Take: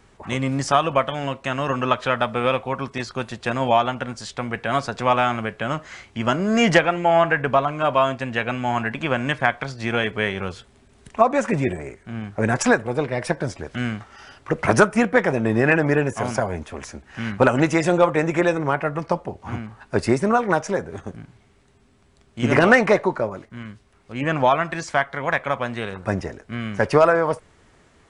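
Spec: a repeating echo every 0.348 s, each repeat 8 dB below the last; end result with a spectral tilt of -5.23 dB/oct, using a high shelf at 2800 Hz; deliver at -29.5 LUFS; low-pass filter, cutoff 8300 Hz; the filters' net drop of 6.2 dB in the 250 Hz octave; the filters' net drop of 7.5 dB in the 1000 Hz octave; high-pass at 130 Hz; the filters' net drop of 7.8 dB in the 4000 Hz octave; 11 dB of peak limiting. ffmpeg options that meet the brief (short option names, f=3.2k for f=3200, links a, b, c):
-af "highpass=130,lowpass=8.3k,equalizer=f=250:t=o:g=-7,equalizer=f=1k:t=o:g=-9,highshelf=f=2.8k:g=-7,equalizer=f=4k:t=o:g=-4.5,alimiter=limit=-17.5dB:level=0:latency=1,aecho=1:1:348|696|1044|1392|1740:0.398|0.159|0.0637|0.0255|0.0102,volume=0.5dB"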